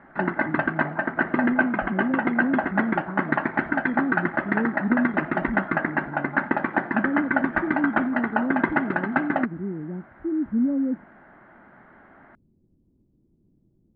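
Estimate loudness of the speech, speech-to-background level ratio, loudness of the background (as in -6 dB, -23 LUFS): -28.5 LUFS, -3.0 dB, -25.5 LUFS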